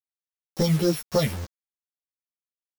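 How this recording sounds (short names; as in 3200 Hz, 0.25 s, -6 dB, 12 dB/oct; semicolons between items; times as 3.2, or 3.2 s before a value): a buzz of ramps at a fixed pitch in blocks of 8 samples; phasing stages 4, 3.7 Hz, lowest notch 670–2800 Hz; a quantiser's noise floor 6-bit, dither none; a shimmering, thickened sound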